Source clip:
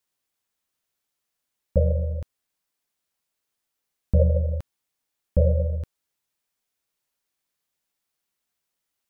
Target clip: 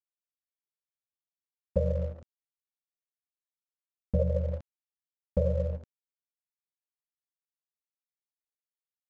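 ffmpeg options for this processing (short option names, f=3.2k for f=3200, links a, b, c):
-af "highpass=97,agate=range=-10dB:threshold=-30dB:ratio=16:detection=peak,aresample=16000,aeval=exprs='sgn(val(0))*max(abs(val(0))-0.00335,0)':c=same,aresample=44100,acompressor=threshold=-23dB:ratio=3"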